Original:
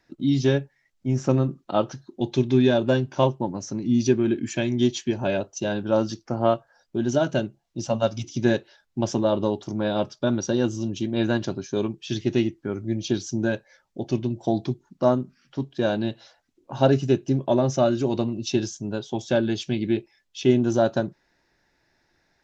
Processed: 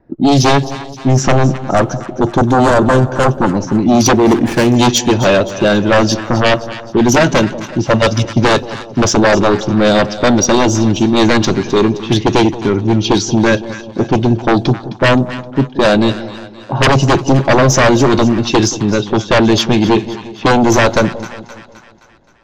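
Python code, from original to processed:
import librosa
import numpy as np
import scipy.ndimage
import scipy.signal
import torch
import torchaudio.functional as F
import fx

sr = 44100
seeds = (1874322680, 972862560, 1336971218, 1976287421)

p1 = fx.env_lowpass(x, sr, base_hz=610.0, full_db=-19.0)
p2 = fx.high_shelf(p1, sr, hz=6300.0, db=8.0)
p3 = fx.fold_sine(p2, sr, drive_db=15, ceiling_db=-4.5)
p4 = fx.band_shelf(p3, sr, hz=3300.0, db=-11.5, octaves=1.7, at=(1.57, 3.31))
p5 = p4 + fx.echo_split(p4, sr, split_hz=820.0, low_ms=180, high_ms=261, feedback_pct=52, wet_db=-14.0, dry=0)
p6 = fx.running_max(p5, sr, window=9, at=(4.15, 4.76))
y = F.gain(torch.from_numpy(p6), -1.0).numpy()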